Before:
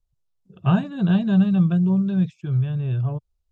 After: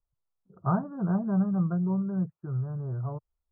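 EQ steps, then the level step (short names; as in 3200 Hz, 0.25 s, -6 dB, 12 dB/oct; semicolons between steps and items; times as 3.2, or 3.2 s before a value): Chebyshev low-pass 1400 Hz, order 6; low shelf 460 Hz -10.5 dB; +1.0 dB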